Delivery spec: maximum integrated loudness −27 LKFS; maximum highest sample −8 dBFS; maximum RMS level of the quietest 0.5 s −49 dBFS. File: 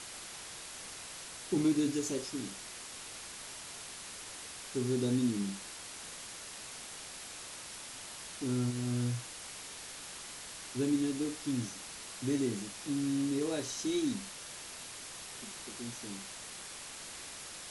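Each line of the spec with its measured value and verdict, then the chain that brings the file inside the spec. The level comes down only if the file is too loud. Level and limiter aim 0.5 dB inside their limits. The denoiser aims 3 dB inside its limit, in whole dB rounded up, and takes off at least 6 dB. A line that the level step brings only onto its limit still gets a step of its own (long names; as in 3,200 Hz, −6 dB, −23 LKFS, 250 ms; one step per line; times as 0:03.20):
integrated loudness −37.5 LKFS: in spec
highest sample −20.0 dBFS: in spec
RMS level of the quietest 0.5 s −46 dBFS: out of spec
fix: broadband denoise 6 dB, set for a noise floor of −46 dBFS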